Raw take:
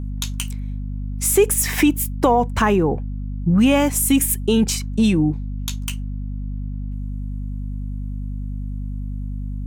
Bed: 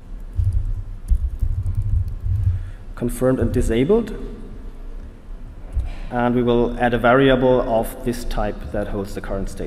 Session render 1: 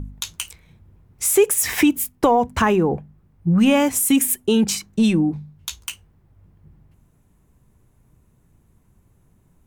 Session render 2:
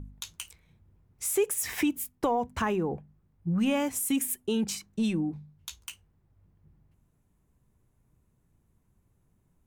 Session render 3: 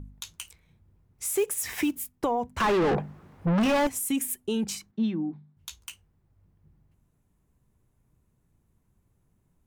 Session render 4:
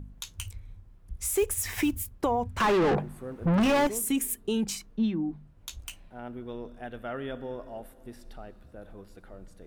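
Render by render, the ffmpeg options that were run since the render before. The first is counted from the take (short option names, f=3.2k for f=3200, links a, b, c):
-af "bandreject=f=50:t=h:w=4,bandreject=f=100:t=h:w=4,bandreject=f=150:t=h:w=4,bandreject=f=200:t=h:w=4,bandreject=f=250:t=h:w=4"
-af "volume=-11dB"
-filter_complex "[0:a]asettb=1/sr,asplit=3[a][b][c];[a]atrim=end=1.354[d];[b]atrim=start=1.35:end=2.01,asetpts=PTS-STARTPTS,afade=t=in:d=0.004:c=qsin,afade=t=out:st=0.656:d=0.004:c=qsin,acrusher=bits=6:mode=log:mix=0:aa=0.000001[e];[c]atrim=start=2.006[f];[d][e]acrossfade=d=0.004:c1=hsin:c2=qsin[g];[g][f]acrossfade=d=0.004:c1=qsin:c2=hsin,asettb=1/sr,asplit=3[h][i][j];[h]atrim=end=2.604[k];[i]atrim=start=2.6:end=3.87,asetpts=PTS-STARTPTS,afade=t=in:d=0.004:c=qsin,afade=t=out:st=1.266:d=0.004:c=qsin,asplit=2[l][m];[m]highpass=f=720:p=1,volume=36dB,asoftclip=type=tanh:threshold=-16.5dB[n];[l][n]amix=inputs=2:normalize=0,lowpass=f=1.8k:p=1,volume=-6dB[o];[j]atrim=start=3.866[p];[k][o]acrossfade=d=0.004:c1=hsin:c2=qsin[q];[q][p]acrossfade=d=0.004:c1=qsin:c2=hsin,asettb=1/sr,asplit=3[r][s][t];[r]atrim=end=4.914[u];[s]atrim=start=4.91:end=5.57,asetpts=PTS-STARTPTS,afade=t=in:d=0.004:c=qsin,afade=t=out:st=0.656:d=0.004:c=qsin,highpass=190,equalizer=f=240:t=q:w=4:g=5,equalizer=f=510:t=q:w=4:g=-9,equalizer=f=2.6k:t=q:w=4:g=-9,lowpass=f=3.6k:w=0.5412,lowpass=f=3.6k:w=1.3066[v];[t]atrim=start=5.566[w];[u][v]acrossfade=d=0.004:c1=hsin:c2=qsin[x];[x][w]acrossfade=d=0.004:c1=qsin:c2=hsin"
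-filter_complex "[1:a]volume=-22dB[a];[0:a][a]amix=inputs=2:normalize=0"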